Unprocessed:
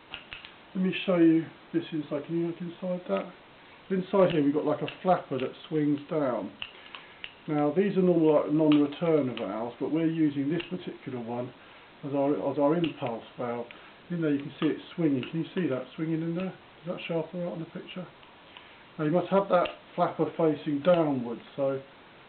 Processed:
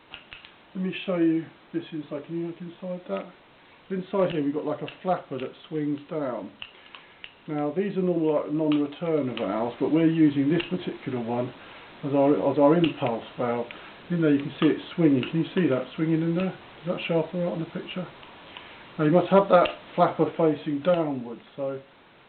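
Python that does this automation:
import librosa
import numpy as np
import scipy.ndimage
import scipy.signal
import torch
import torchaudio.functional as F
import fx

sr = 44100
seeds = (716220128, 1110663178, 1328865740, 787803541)

y = fx.gain(x, sr, db=fx.line((9.1, -1.5), (9.5, 6.0), (20.0, 6.0), (21.25, -2.0)))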